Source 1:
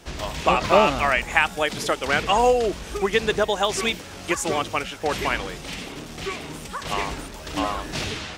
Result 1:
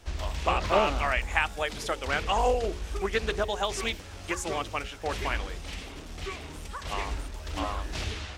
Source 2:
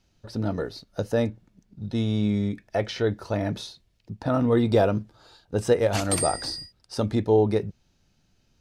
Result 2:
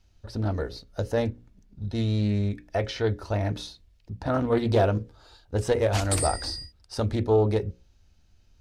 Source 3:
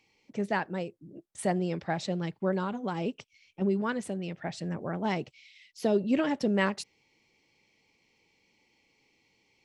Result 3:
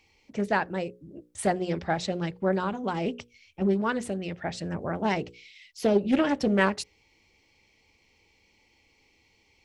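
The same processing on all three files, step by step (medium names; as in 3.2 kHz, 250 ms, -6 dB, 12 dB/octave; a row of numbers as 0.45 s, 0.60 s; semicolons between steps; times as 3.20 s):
resonant low shelf 100 Hz +10 dB, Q 1.5; hum notches 60/120/180/240/300/360/420/480/540 Hz; loudspeaker Doppler distortion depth 0.25 ms; peak normalisation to -9 dBFS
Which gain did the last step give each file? -7.0 dB, -1.0 dB, +4.5 dB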